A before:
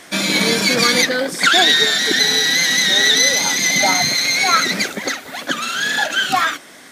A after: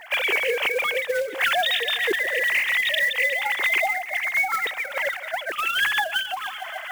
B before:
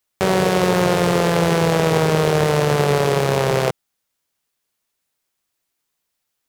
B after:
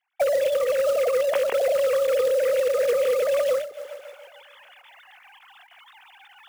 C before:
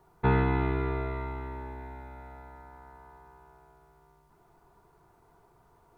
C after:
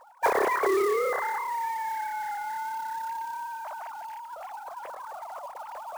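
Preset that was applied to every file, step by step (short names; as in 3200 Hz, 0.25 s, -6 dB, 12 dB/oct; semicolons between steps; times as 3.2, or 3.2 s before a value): sine-wave speech; reverse; upward compressor, threshold -31 dBFS; reverse; short-mantissa float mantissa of 2-bit; dynamic EQ 1400 Hz, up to -7 dB, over -30 dBFS, Q 2.2; on a send: thinning echo 0.14 s, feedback 59%, high-pass 210 Hz, level -19.5 dB; on the sum: compressor 6:1, threshold -25 dBFS; ending taper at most 120 dB/s; gain +5 dB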